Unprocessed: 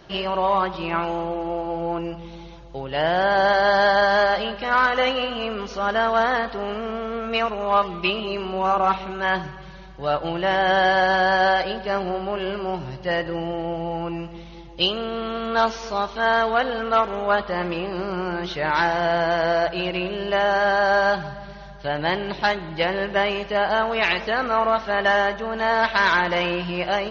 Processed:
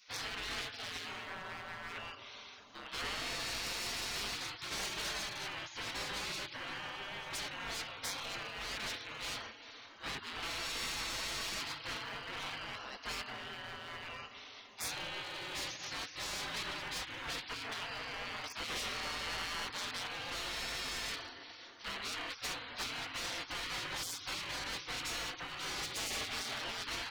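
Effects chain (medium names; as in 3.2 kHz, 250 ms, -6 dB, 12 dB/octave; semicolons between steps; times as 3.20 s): hard clipper -24 dBFS, distortion -6 dB; spectral gate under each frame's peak -20 dB weak; saturation -31.5 dBFS, distortion -16 dB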